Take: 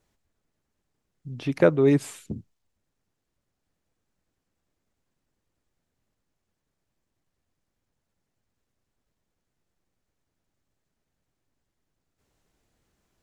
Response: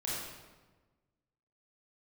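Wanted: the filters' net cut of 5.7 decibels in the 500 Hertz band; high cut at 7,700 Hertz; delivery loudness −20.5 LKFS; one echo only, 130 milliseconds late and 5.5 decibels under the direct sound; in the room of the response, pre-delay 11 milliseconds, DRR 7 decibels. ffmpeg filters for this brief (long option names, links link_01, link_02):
-filter_complex "[0:a]lowpass=7700,equalizer=frequency=500:width_type=o:gain=-7,aecho=1:1:130:0.531,asplit=2[link_01][link_02];[1:a]atrim=start_sample=2205,adelay=11[link_03];[link_02][link_03]afir=irnorm=-1:irlink=0,volume=-11dB[link_04];[link_01][link_04]amix=inputs=2:normalize=0,volume=5dB"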